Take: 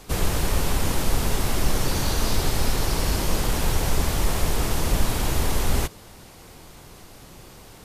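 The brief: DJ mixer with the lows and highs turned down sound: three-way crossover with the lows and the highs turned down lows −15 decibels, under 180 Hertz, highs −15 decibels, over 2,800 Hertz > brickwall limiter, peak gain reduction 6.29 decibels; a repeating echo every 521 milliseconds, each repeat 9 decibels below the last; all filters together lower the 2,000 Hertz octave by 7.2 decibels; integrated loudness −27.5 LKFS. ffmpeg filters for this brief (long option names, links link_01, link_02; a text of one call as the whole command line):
ffmpeg -i in.wav -filter_complex "[0:a]acrossover=split=180 2800:gain=0.178 1 0.178[link_01][link_02][link_03];[link_01][link_02][link_03]amix=inputs=3:normalize=0,equalizer=frequency=2000:width_type=o:gain=-7.5,aecho=1:1:521|1042|1563|2084:0.355|0.124|0.0435|0.0152,volume=6dB,alimiter=limit=-17dB:level=0:latency=1" out.wav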